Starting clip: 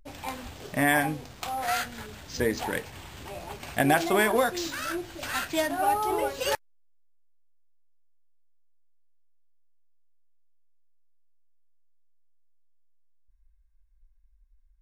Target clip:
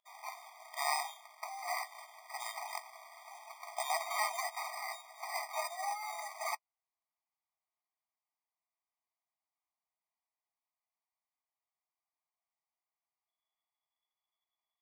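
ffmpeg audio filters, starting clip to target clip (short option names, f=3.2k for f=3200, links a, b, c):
-af "equalizer=f=800:t=o:w=1.7:g=-14,acrusher=samples=13:mix=1:aa=0.000001,afftfilt=real='re*eq(mod(floor(b*sr/1024/630),2),1)':imag='im*eq(mod(floor(b*sr/1024/630),2),1)':win_size=1024:overlap=0.75,volume=1dB"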